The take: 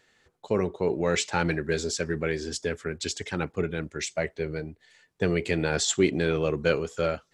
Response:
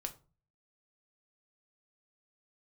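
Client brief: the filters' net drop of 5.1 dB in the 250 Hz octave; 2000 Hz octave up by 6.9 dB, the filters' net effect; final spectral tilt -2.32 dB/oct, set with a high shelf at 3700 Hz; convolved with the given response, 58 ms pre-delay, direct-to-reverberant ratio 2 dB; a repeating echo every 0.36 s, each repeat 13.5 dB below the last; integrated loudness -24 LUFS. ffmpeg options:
-filter_complex "[0:a]equalizer=f=250:t=o:g=-9,equalizer=f=2k:t=o:g=7,highshelf=f=3.7k:g=8,aecho=1:1:360|720:0.211|0.0444,asplit=2[a][b];[1:a]atrim=start_sample=2205,adelay=58[c];[b][c]afir=irnorm=-1:irlink=0,volume=-0.5dB[d];[a][d]amix=inputs=2:normalize=0,volume=-0.5dB"

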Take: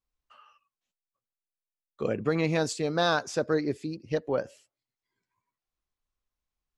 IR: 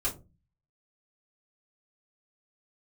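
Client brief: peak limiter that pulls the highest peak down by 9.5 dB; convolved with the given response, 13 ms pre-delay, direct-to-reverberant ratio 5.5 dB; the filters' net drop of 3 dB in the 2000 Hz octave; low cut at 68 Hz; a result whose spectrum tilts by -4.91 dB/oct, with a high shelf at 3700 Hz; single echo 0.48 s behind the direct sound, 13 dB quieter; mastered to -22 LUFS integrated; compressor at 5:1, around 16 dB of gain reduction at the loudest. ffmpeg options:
-filter_complex "[0:a]highpass=68,equalizer=f=2k:t=o:g=-5.5,highshelf=f=3.7k:g=4.5,acompressor=threshold=-40dB:ratio=5,alimiter=level_in=13dB:limit=-24dB:level=0:latency=1,volume=-13dB,aecho=1:1:480:0.224,asplit=2[a][b];[1:a]atrim=start_sample=2205,adelay=13[c];[b][c]afir=irnorm=-1:irlink=0,volume=-11dB[d];[a][d]amix=inputs=2:normalize=0,volume=24.5dB"

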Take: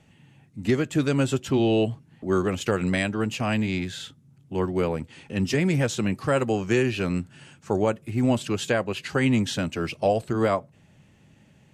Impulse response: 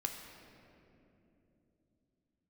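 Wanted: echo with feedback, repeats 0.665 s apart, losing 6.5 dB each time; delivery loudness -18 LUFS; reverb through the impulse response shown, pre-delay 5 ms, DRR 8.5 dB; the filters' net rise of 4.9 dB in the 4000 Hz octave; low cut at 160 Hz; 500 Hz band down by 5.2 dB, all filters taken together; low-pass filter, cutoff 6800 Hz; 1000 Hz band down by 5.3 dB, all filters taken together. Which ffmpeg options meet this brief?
-filter_complex "[0:a]highpass=160,lowpass=6.8k,equalizer=f=500:t=o:g=-5.5,equalizer=f=1k:t=o:g=-6,equalizer=f=4k:t=o:g=7.5,aecho=1:1:665|1330|1995|2660|3325|3990:0.473|0.222|0.105|0.0491|0.0231|0.0109,asplit=2[a][b];[1:a]atrim=start_sample=2205,adelay=5[c];[b][c]afir=irnorm=-1:irlink=0,volume=-9dB[d];[a][d]amix=inputs=2:normalize=0,volume=8.5dB"

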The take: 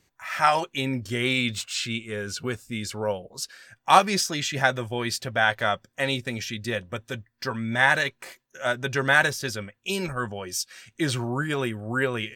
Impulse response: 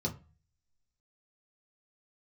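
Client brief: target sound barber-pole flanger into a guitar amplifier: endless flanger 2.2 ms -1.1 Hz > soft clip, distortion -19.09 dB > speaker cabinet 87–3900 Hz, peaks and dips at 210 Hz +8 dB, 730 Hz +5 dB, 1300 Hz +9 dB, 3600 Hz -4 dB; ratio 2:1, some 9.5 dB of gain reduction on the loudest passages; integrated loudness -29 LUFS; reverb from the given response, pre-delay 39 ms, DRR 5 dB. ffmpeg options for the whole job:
-filter_complex "[0:a]acompressor=threshold=-28dB:ratio=2,asplit=2[a][b];[1:a]atrim=start_sample=2205,adelay=39[c];[b][c]afir=irnorm=-1:irlink=0,volume=-8.5dB[d];[a][d]amix=inputs=2:normalize=0,asplit=2[e][f];[f]adelay=2.2,afreqshift=-1.1[g];[e][g]amix=inputs=2:normalize=1,asoftclip=threshold=-20.5dB,highpass=87,equalizer=f=210:t=q:w=4:g=8,equalizer=f=730:t=q:w=4:g=5,equalizer=f=1.3k:t=q:w=4:g=9,equalizer=f=3.6k:t=q:w=4:g=-4,lowpass=f=3.9k:w=0.5412,lowpass=f=3.9k:w=1.3066,volume=0.5dB"

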